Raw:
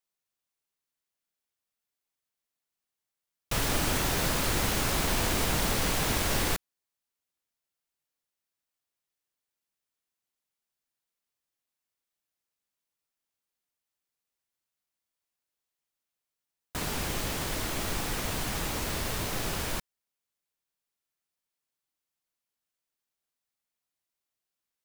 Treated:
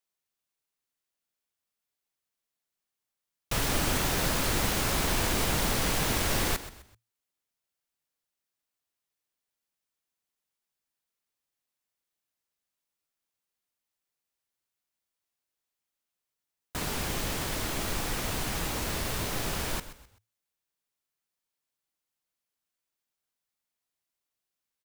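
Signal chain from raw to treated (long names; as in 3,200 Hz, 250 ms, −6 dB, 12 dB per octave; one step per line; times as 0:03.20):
echo with shifted repeats 128 ms, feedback 34%, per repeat −38 Hz, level −14 dB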